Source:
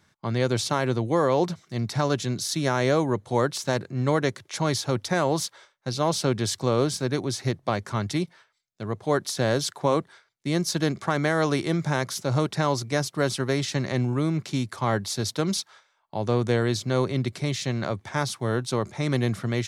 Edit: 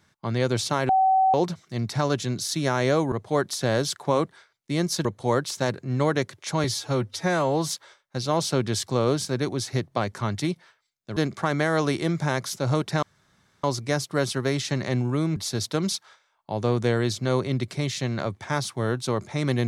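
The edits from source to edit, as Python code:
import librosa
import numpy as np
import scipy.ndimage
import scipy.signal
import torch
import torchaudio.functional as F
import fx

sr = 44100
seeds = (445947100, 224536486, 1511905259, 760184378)

y = fx.edit(x, sr, fx.bleep(start_s=0.89, length_s=0.45, hz=762.0, db=-16.0),
    fx.stretch_span(start_s=4.71, length_s=0.71, factor=1.5),
    fx.move(start_s=8.88, length_s=1.93, to_s=3.12),
    fx.insert_room_tone(at_s=12.67, length_s=0.61),
    fx.cut(start_s=14.4, length_s=0.61), tone=tone)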